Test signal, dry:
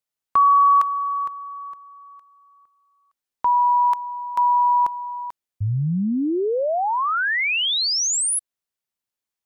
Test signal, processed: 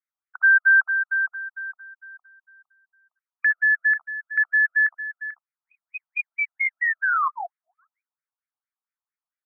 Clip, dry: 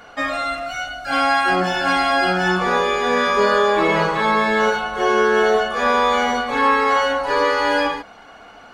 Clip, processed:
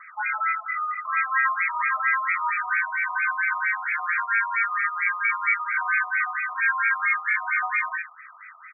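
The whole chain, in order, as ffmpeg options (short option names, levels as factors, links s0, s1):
-af "alimiter=limit=0.211:level=0:latency=1:release=96,aecho=1:1:62|75:0.376|0.211,lowpass=f=2300:t=q:w=0.5098,lowpass=f=2300:t=q:w=0.6013,lowpass=f=2300:t=q:w=0.9,lowpass=f=2300:t=q:w=2.563,afreqshift=-2700,afftfilt=real='re*between(b*sr/1024,900*pow(1800/900,0.5+0.5*sin(2*PI*4.4*pts/sr))/1.41,900*pow(1800/900,0.5+0.5*sin(2*PI*4.4*pts/sr))*1.41)':imag='im*between(b*sr/1024,900*pow(1800/900,0.5+0.5*sin(2*PI*4.4*pts/sr))/1.41,900*pow(1800/900,0.5+0.5*sin(2*PI*4.4*pts/sr))*1.41)':win_size=1024:overlap=0.75"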